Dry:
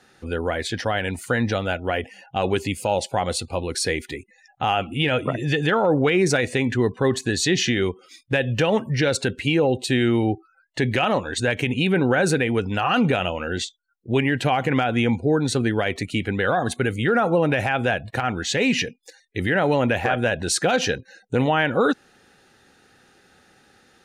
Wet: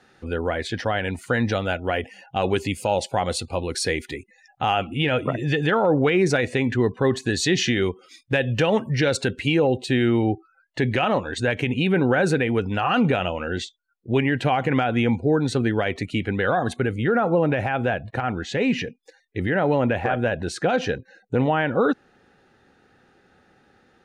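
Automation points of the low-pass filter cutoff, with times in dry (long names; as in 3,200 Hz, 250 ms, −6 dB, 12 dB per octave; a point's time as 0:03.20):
low-pass filter 6 dB per octave
3,700 Hz
from 0:01.34 8,800 Hz
from 0:04.87 3,700 Hz
from 0:07.21 7,500 Hz
from 0:09.67 3,200 Hz
from 0:16.80 1,500 Hz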